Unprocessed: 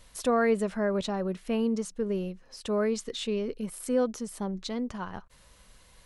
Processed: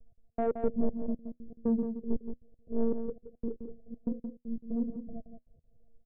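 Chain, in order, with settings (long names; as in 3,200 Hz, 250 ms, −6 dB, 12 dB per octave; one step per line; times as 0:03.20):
variable-slope delta modulation 16 kbit/s
Chebyshev low-pass filter 710 Hz, order 10
hum removal 62.73 Hz, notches 9
volume swells 116 ms
spectral tilt −1.5 dB per octave
one-pitch LPC vocoder at 8 kHz 230 Hz
gate pattern "x..x.xx." 118 BPM −60 dB
tuned comb filter 80 Hz, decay 0.18 s, harmonics all, mix 30%
soft clipping −23 dBFS, distortion −16 dB
low-shelf EQ 310 Hz +7.5 dB
single-tap delay 172 ms −5.5 dB
expander for the loud parts 1.5 to 1, over −41 dBFS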